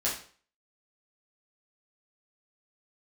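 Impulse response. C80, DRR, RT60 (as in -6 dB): 10.5 dB, -8.0 dB, 0.45 s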